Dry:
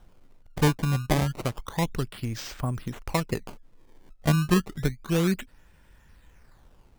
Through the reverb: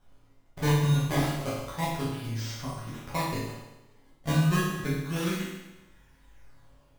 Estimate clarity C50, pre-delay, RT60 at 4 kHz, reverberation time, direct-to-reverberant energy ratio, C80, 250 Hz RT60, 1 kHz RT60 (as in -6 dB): 0.5 dB, 7 ms, 1.0 s, 1.0 s, -9.5 dB, 3.5 dB, 1.0 s, 1.0 s